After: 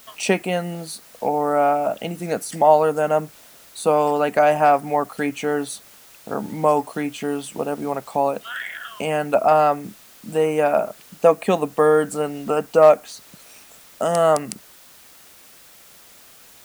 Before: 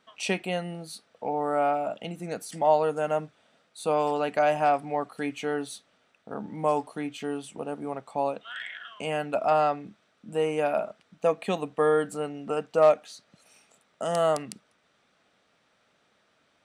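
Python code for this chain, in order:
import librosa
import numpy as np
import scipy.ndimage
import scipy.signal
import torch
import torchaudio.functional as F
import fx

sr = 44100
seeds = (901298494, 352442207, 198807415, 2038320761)

y = fx.hpss(x, sr, part='percussive', gain_db=4)
y = fx.dmg_noise_colour(y, sr, seeds[0], colour='white', level_db=-55.0)
y = fx.dynamic_eq(y, sr, hz=3600.0, q=1.0, threshold_db=-45.0, ratio=4.0, max_db=-7)
y = F.gain(torch.from_numpy(y), 7.0).numpy()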